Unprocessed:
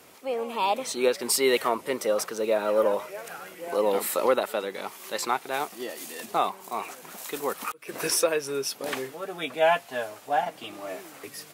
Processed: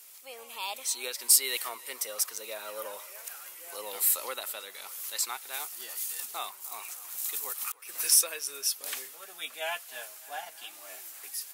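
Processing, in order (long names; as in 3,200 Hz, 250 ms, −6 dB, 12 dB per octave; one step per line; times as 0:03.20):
first difference
on a send: feedback echo with a band-pass in the loop 301 ms, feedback 80%, band-pass 1,300 Hz, level −18 dB
on the sum: level +4 dB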